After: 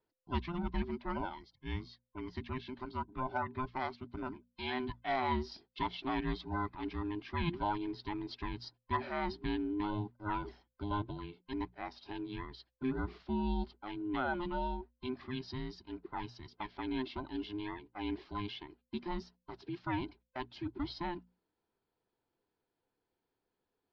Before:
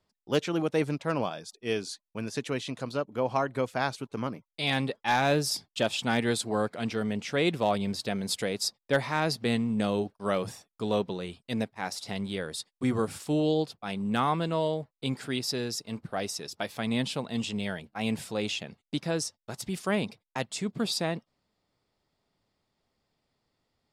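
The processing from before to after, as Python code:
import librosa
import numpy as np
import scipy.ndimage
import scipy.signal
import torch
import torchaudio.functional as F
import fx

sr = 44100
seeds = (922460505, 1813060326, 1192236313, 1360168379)

y = fx.band_invert(x, sr, width_hz=500)
y = scipy.signal.sosfilt(scipy.signal.butter(8, 4900.0, 'lowpass', fs=sr, output='sos'), y)
y = fx.high_shelf(y, sr, hz=3600.0, db=-11.0)
y = fx.hum_notches(y, sr, base_hz=60, count=4)
y = F.gain(torch.from_numpy(y), -7.5).numpy()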